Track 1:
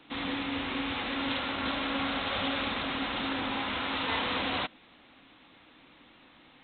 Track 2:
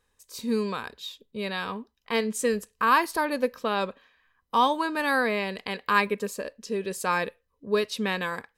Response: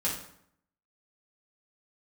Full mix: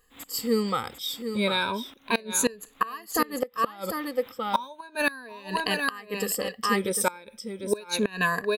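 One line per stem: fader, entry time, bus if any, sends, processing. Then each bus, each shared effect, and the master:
-6.0 dB, 0.00 s, no send, echo send -10 dB, companded quantiser 6-bit; sawtooth tremolo in dB swelling 4.2 Hz, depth 29 dB; auto duck -13 dB, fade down 1.25 s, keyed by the second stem
+1.0 dB, 0.00 s, no send, echo send -8.5 dB, drifting ripple filter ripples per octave 1.5, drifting +0.35 Hz, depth 18 dB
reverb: none
echo: delay 749 ms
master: inverted gate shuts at -11 dBFS, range -24 dB; treble shelf 7.8 kHz +9.5 dB

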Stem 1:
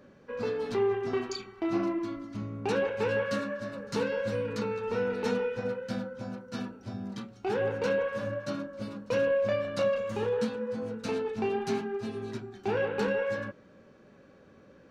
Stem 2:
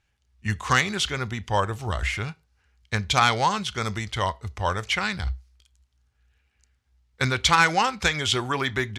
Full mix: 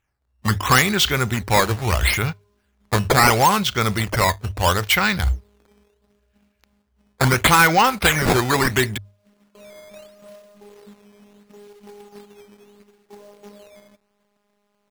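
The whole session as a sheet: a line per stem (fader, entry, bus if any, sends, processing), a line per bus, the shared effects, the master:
-12.0 dB, 0.45 s, no send, elliptic low-pass 1.2 kHz; robot voice 205 Hz; companded quantiser 4-bit; auto duck -14 dB, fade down 1.80 s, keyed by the second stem
+1.0 dB, 0.00 s, no send, waveshaping leveller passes 2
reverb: none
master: decimation with a swept rate 9×, swing 160% 0.74 Hz; hum notches 50/100 Hz

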